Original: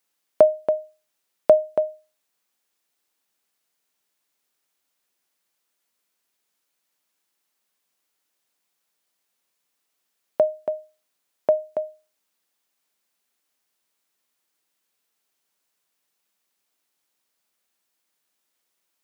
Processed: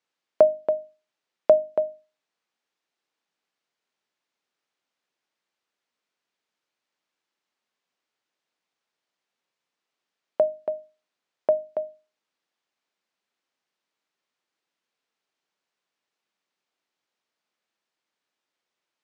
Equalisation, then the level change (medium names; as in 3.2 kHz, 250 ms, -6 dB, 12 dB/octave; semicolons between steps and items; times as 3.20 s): high-pass 110 Hz; distance through air 120 m; hum notches 50/100/150/200/250/300 Hz; -1.5 dB